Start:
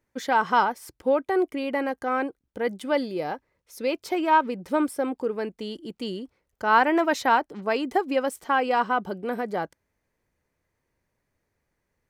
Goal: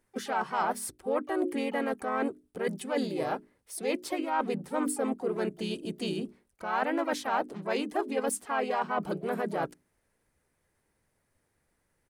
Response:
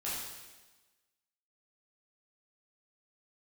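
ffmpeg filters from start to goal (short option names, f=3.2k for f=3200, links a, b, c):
-filter_complex "[0:a]equalizer=f=10k:w=5:g=14,bandreject=f=60:t=h:w=6,bandreject=f=120:t=h:w=6,bandreject=f=180:t=h:w=6,bandreject=f=240:t=h:w=6,bandreject=f=300:t=h:w=6,bandreject=f=360:t=h:w=6,bandreject=f=420:t=h:w=6,areverse,acompressor=threshold=-29dB:ratio=5,areverse,asplit=3[a][b][c];[b]asetrate=37084,aresample=44100,atempo=1.18921,volume=-3dB[d];[c]asetrate=66075,aresample=44100,atempo=0.66742,volume=-15dB[e];[a][d][e]amix=inputs=3:normalize=0"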